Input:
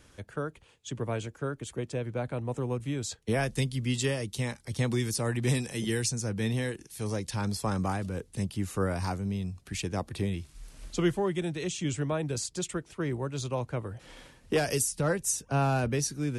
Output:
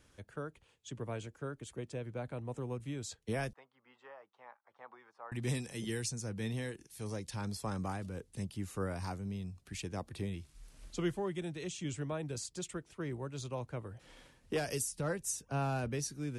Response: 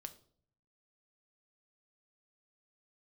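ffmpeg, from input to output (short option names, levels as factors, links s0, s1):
-filter_complex "[0:a]asettb=1/sr,asplit=3[s0][s1][s2];[s0]atrim=end=3.534[s3];[s1]atrim=start=3.53:end=5.32,asetpts=PTS-STARTPTS,afade=t=in:d=0.004:c=qsin,afade=t=out:st=1.786:d=0.004:c=qsin,asuperpass=centerf=1000:order=4:qfactor=1.5[s4];[s2]atrim=start=5.316[s5];[s3][s4]acrossfade=d=0.004:c1=hsin:c2=qsin[s6];[s6][s5]acrossfade=d=0.004:c1=qsin:c2=hsin,volume=0.398"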